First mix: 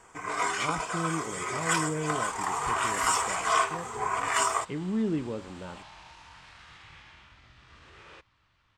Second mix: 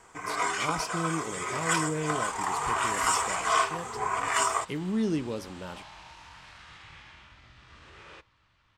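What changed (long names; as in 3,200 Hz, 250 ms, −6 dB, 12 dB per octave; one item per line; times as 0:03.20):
speech: remove high-frequency loss of the air 370 metres
second sound: send on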